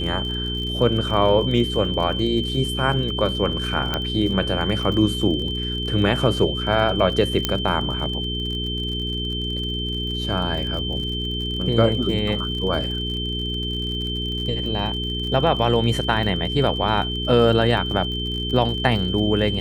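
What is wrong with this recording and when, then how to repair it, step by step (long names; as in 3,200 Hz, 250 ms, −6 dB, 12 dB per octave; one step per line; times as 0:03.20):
surface crackle 48 per second −30 dBFS
mains hum 60 Hz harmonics 7 −28 dBFS
whistle 3,100 Hz −27 dBFS
0:03.94: click −9 dBFS
0:07.45: click −4 dBFS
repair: click removal
hum removal 60 Hz, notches 7
notch filter 3,100 Hz, Q 30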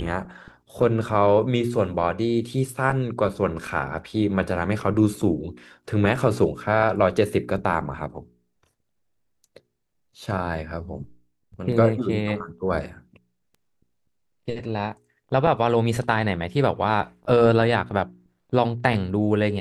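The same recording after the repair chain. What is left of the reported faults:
none of them is left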